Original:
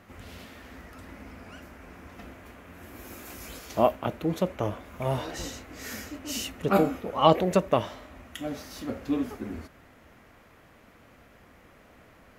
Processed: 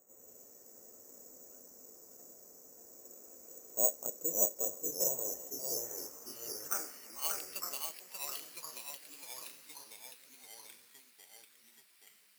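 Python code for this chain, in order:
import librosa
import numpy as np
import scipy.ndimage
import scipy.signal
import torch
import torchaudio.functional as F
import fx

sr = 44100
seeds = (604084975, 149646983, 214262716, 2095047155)

y = fx.filter_sweep_bandpass(x, sr, from_hz=490.0, to_hz=2900.0, start_s=5.15, end_s=7.56, q=3.5)
y = (np.kron(scipy.signal.resample_poly(y, 1, 6), np.eye(6)[0]) * 6)[:len(y)]
y = y + 10.0 ** (-4.5 / 20.0) * np.pad(y, (int(586 * sr / 1000.0), 0))[:len(y)]
y = fx.echo_pitch(y, sr, ms=86, semitones=-2, count=3, db_per_echo=-6.0)
y = y * 10.0 ** (-9.0 / 20.0)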